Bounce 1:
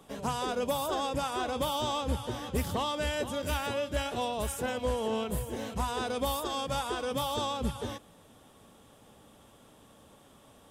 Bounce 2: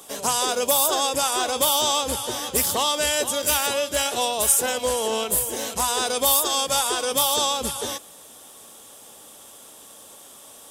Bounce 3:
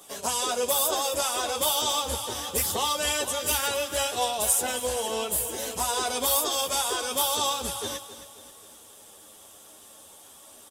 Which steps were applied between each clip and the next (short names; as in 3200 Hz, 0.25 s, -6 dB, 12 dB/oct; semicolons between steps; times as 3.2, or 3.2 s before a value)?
tone controls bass -14 dB, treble +14 dB; gain +8 dB
chorus voices 6, 0.67 Hz, delay 11 ms, depth 1.8 ms; feedback echo 0.268 s, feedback 46%, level -13.5 dB; gain -1.5 dB